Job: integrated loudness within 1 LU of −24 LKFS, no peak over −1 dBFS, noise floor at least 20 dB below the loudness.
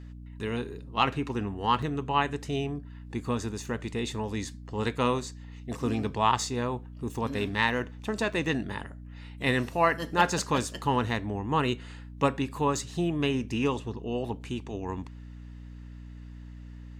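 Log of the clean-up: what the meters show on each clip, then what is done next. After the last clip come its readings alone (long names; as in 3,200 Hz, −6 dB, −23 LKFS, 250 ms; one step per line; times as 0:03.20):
number of dropouts 1; longest dropout 5.2 ms; mains hum 60 Hz; hum harmonics up to 300 Hz; level of the hum −41 dBFS; integrated loudness −29.5 LKFS; sample peak −8.5 dBFS; target loudness −24.0 LKFS
→ repair the gap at 0:01.82, 5.2 ms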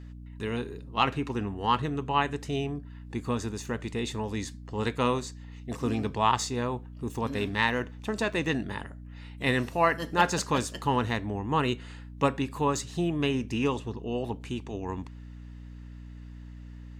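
number of dropouts 0; mains hum 60 Hz; hum harmonics up to 300 Hz; level of the hum −41 dBFS
→ mains-hum notches 60/120/180/240/300 Hz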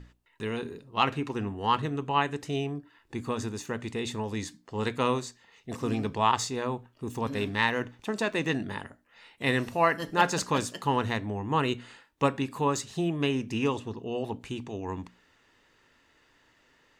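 mains hum none found; integrated loudness −30.0 LKFS; sample peak −8.0 dBFS; target loudness −24.0 LKFS
→ level +6 dB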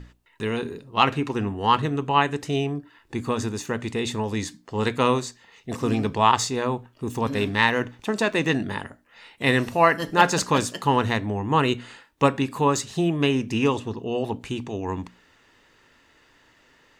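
integrated loudness −24.0 LKFS; sample peak −2.0 dBFS; background noise floor −59 dBFS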